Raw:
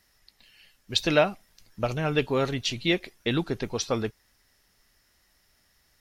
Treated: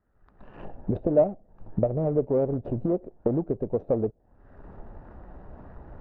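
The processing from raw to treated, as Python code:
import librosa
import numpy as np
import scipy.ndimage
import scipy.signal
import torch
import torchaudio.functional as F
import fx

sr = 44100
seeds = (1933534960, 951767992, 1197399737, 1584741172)

y = scipy.signal.medfilt(x, 41)
y = fx.recorder_agc(y, sr, target_db=-19.0, rise_db_per_s=47.0, max_gain_db=30)
y = fx.envelope_lowpass(y, sr, base_hz=600.0, top_hz=1300.0, q=2.6, full_db=-27.5, direction='down')
y = y * librosa.db_to_amplitude(-2.5)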